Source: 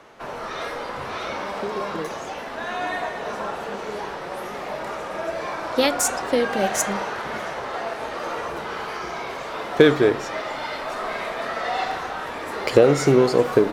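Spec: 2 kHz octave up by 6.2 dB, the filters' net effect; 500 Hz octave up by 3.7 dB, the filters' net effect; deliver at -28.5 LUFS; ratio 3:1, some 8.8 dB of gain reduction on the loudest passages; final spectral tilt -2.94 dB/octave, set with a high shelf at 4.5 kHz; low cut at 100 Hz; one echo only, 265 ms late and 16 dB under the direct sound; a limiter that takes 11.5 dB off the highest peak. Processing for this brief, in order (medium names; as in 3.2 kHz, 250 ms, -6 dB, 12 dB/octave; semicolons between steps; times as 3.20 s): high-pass 100 Hz; peaking EQ 500 Hz +4 dB; peaking EQ 2 kHz +7 dB; treble shelf 4.5 kHz +3.5 dB; compression 3:1, threshold -17 dBFS; peak limiter -14.5 dBFS; delay 265 ms -16 dB; trim -3.5 dB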